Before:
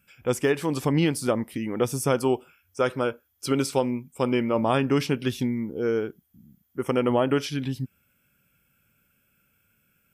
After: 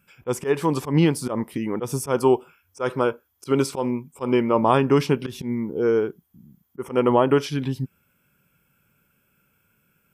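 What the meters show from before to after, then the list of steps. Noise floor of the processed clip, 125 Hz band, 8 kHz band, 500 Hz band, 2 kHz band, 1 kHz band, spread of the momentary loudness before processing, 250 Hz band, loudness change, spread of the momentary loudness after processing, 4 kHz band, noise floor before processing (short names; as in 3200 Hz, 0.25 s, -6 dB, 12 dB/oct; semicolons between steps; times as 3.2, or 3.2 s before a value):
-68 dBFS, +2.5 dB, -0.5 dB, +3.5 dB, 0.0 dB, +5.0 dB, 9 LU, +2.5 dB, +3.0 dB, 10 LU, -0.5 dB, -69 dBFS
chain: auto swell 0.103 s; fifteen-band EQ 160 Hz +5 dB, 400 Hz +6 dB, 1000 Hz +9 dB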